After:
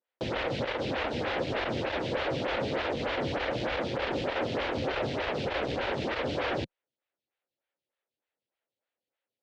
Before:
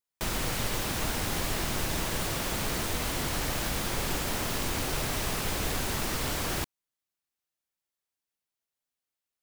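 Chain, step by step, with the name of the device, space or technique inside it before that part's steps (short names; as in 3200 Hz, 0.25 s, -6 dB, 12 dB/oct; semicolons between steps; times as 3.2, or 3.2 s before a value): vibe pedal into a guitar amplifier (photocell phaser 3.3 Hz; tube stage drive 32 dB, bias 0.3; speaker cabinet 87–3700 Hz, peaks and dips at 180 Hz -7 dB, 530 Hz +8 dB, 1100 Hz -5 dB); gain +8.5 dB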